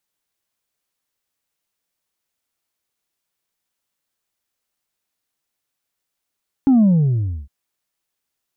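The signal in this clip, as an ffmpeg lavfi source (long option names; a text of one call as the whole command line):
ffmpeg -f lavfi -i "aevalsrc='0.316*clip((0.81-t)/0.66,0,1)*tanh(1.26*sin(2*PI*280*0.81/log(65/280)*(exp(log(65/280)*t/0.81)-1)))/tanh(1.26)':duration=0.81:sample_rate=44100" out.wav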